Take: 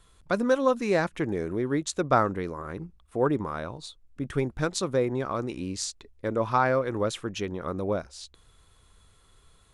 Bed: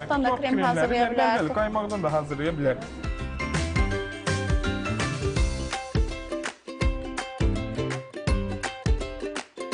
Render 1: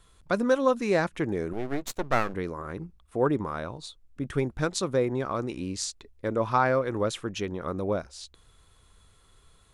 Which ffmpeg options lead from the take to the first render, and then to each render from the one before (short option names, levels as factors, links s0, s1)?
-filter_complex "[0:a]asettb=1/sr,asplit=3[s0][s1][s2];[s0]atrim=end=1.534[s3];[s1]atrim=start=1.53:end=2.34,asetpts=PTS-STARTPTS,afade=t=in:d=0.004:c=qsin,afade=t=out:st=0.806:d=0.004:c=qsin,aeval=exprs='max(val(0),0)':c=same[s4];[s2]atrim=start=2.336[s5];[s3][s4]acrossfade=d=0.004:c1=hsin:c2=qsin[s6];[s6][s5]acrossfade=d=0.004:c1=qsin:c2=hsin"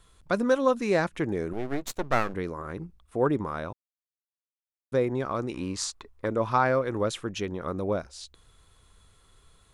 -filter_complex "[0:a]asettb=1/sr,asplit=3[s0][s1][s2];[s0]atrim=end=5.544[s3];[s1]atrim=start=5.54:end=6.26,asetpts=PTS-STARTPTS,afade=t=in:d=0.004:c=qsin,afade=t=out:st=0.716:d=0.004:c=qsin,equalizer=f=1100:t=o:w=1.1:g=13.5[s4];[s2]atrim=start=6.256[s5];[s3][s4]acrossfade=d=0.004:c1=hsin:c2=qsin[s6];[s6][s5]acrossfade=d=0.004:c1=qsin:c2=hsin,asplit=3[s7][s8][s9];[s7]atrim=end=3.73,asetpts=PTS-STARTPTS,afade=t=out:st=3.726:d=0.004:c=hsin[s10];[s8]atrim=start=3.73:end=4.92,asetpts=PTS-STARTPTS,volume=0[s11];[s9]atrim=start=4.92,asetpts=PTS-STARTPTS,afade=t=in:d=0.004:c=hsin[s12];[s10][s11][s12]concat=n=3:v=0:a=1"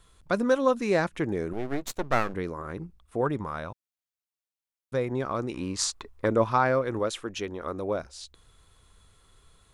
-filter_complex "[0:a]asettb=1/sr,asplit=3[s0][s1][s2];[s0]atrim=end=3.214[s3];[s1]atrim=start=3.21:end=5.11,asetpts=PTS-STARTPTS,afade=t=in:d=0.004:c=qsin,afade=t=out:st=1.896:d=0.004:c=qsin,equalizer=f=340:w=1.1:g=-5.5[s4];[s2]atrim=start=5.106[s5];[s3][s4]acrossfade=d=0.004:c1=hsin:c2=qsin[s6];[s6][s5]acrossfade=d=0.004:c1=qsin:c2=hsin,asettb=1/sr,asplit=3[s7][s8][s9];[s7]atrim=end=6.994[s10];[s8]atrim=start=6.99:end=8,asetpts=PTS-STARTPTS,afade=t=in:d=0.004:c=qsin,afade=t=out:st=1.006:d=0.004:c=qsin,equalizer=f=140:w=1.5:g=-12[s11];[s9]atrim=start=7.996[s12];[s10][s11]acrossfade=d=0.004:c1=hsin:c2=qsin[s13];[s13][s12]acrossfade=d=0.004:c1=qsin:c2=hsin,asplit=3[s14][s15][s16];[s14]atrim=end=5.792[s17];[s15]atrim=start=5.788:end=6.442,asetpts=PTS-STARTPTS,volume=1.58[s18];[s16]atrim=start=6.438[s19];[s17][s18]acrossfade=d=0.004:c1=hsin:c2=hsin[s20];[s20][s19]acrossfade=d=0.004:c1=hsin:c2=hsin"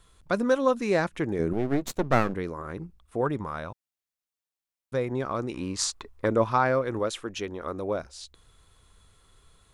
-filter_complex "[0:a]asettb=1/sr,asplit=3[s0][s1][s2];[s0]atrim=end=1.394[s3];[s1]atrim=start=1.39:end=2.34,asetpts=PTS-STARTPTS,afade=t=in:d=0.004:c=qsin,afade=t=out:st=0.946:d=0.004:c=qsin,equalizer=f=170:w=0.39:g=7.5[s4];[s2]atrim=start=2.336[s5];[s3][s4]acrossfade=d=0.004:c1=hsin:c2=qsin[s6];[s6][s5]acrossfade=d=0.004:c1=qsin:c2=hsin"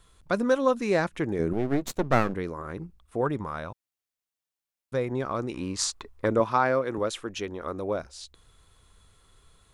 -filter_complex "[0:a]asettb=1/sr,asplit=3[s0][s1][s2];[s0]atrim=end=6.404[s3];[s1]atrim=start=6.4:end=6.98,asetpts=PTS-STARTPTS,afade=t=in:d=0.004:c=qsin,afade=t=out:st=0.576:d=0.004:c=qsin,highpass=150[s4];[s2]atrim=start=6.976[s5];[s3][s4]acrossfade=d=0.004:c1=hsin:c2=qsin[s6];[s6][s5]acrossfade=d=0.004:c1=qsin:c2=hsin"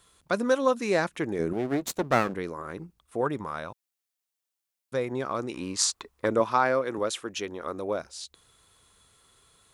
-af "highpass=f=190:p=1,highshelf=f=4200:g=5"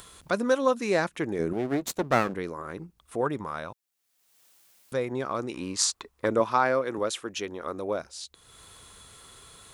-af "acompressor=mode=upward:threshold=0.0112:ratio=2.5"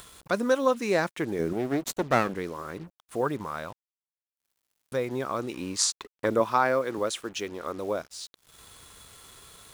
-af "acrusher=bits=7:mix=0:aa=0.5"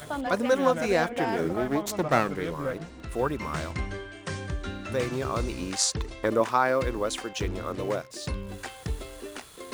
-filter_complex "[1:a]volume=0.398[s0];[0:a][s0]amix=inputs=2:normalize=0"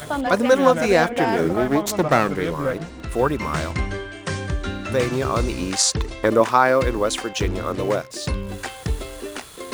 -af "volume=2.37,alimiter=limit=0.794:level=0:latency=1"